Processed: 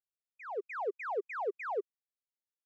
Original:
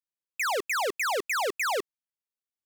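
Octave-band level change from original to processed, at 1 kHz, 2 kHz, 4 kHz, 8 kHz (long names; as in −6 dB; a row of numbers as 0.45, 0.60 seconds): −9.0 dB, −14.5 dB, below −30 dB, below −35 dB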